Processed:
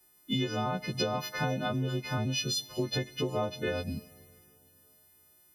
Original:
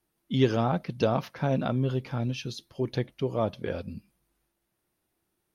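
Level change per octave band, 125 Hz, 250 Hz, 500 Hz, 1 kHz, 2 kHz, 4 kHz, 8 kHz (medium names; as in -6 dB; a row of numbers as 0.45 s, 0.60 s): -4.5 dB, -4.5 dB, -5.0 dB, -2.5 dB, +3.0 dB, +6.0 dB, no reading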